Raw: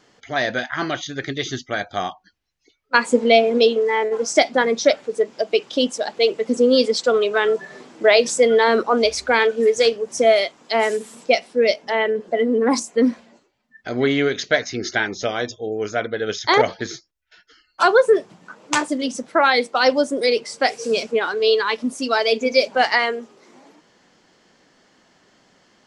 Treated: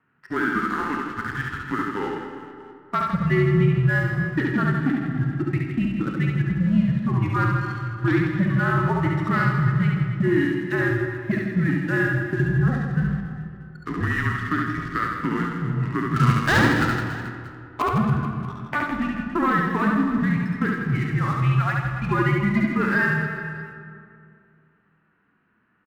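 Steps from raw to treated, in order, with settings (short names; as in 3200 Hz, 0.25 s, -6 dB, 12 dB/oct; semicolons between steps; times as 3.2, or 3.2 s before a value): resonant low shelf 690 Hz +8.5 dB, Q 3; mistuned SSB -310 Hz 200–2100 Hz; differentiator; in parallel at +3 dB: level quantiser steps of 10 dB; on the sum: sample leveller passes 2; compressor 4:1, threshold -28 dBFS, peak gain reduction 10 dB; 16.16–17.82 sample leveller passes 3; reverse bouncing-ball echo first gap 70 ms, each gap 1.3×, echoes 5; reverb RT60 2.5 s, pre-delay 10 ms, DRR 7 dB; harmonic-percussive split percussive -5 dB; gain +7.5 dB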